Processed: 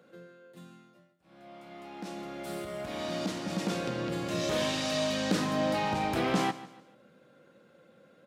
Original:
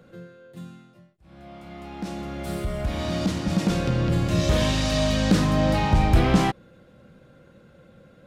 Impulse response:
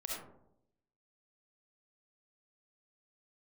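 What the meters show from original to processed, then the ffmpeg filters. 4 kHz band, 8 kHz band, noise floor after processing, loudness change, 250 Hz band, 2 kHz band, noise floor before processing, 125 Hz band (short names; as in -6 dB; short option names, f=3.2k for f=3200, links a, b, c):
-5.0 dB, -5.0 dB, -62 dBFS, -8.5 dB, -9.0 dB, -5.0 dB, -54 dBFS, -15.5 dB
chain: -af "highpass=250,aecho=1:1:146|292|438:0.15|0.0539|0.0194,volume=-5dB"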